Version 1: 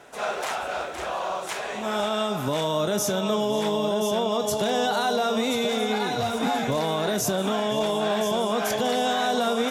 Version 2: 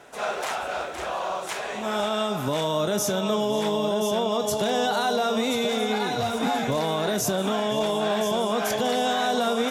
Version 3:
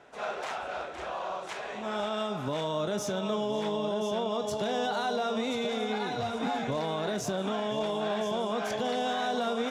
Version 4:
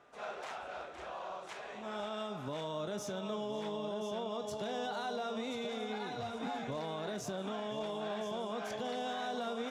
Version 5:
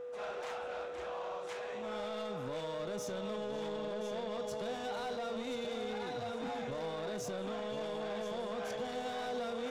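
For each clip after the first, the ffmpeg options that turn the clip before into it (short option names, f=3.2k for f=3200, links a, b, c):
-af anull
-af "adynamicsmooth=sensitivity=1.5:basefreq=5.7k,volume=-6dB"
-af "aeval=exprs='val(0)+0.00112*sin(2*PI*1200*n/s)':c=same,volume=-8dB"
-af "asoftclip=type=tanh:threshold=-38dB,aeval=exprs='val(0)+0.00708*sin(2*PI*490*n/s)':c=same,volume=2dB"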